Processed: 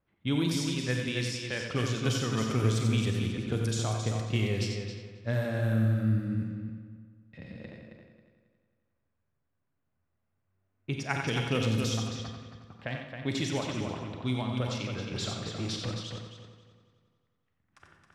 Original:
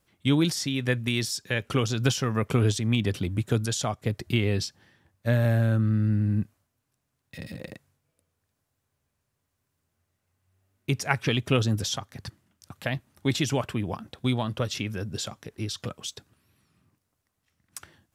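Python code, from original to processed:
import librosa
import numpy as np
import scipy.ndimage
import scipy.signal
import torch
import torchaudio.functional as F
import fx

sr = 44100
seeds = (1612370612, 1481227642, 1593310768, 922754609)

p1 = fx.rev_schroeder(x, sr, rt60_s=0.96, comb_ms=32, drr_db=5.0)
p2 = fx.leveller(p1, sr, passes=2, at=(15.11, 15.91))
p3 = p2 + fx.echo_heads(p2, sr, ms=90, heads='first and third', feedback_pct=47, wet_db=-6.5, dry=0)
p4 = fx.env_lowpass(p3, sr, base_hz=2000.0, full_db=-17.0)
y = p4 * librosa.db_to_amplitude(-7.0)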